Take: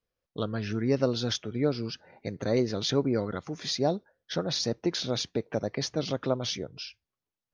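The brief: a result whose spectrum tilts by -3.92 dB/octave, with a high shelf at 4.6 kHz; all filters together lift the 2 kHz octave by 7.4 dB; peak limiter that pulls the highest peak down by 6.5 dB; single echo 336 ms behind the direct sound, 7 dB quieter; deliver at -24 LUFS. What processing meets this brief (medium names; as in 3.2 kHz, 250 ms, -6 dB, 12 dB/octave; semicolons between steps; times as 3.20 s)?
peaking EQ 2 kHz +8 dB; treble shelf 4.6 kHz +7.5 dB; peak limiter -16.5 dBFS; delay 336 ms -7 dB; trim +5 dB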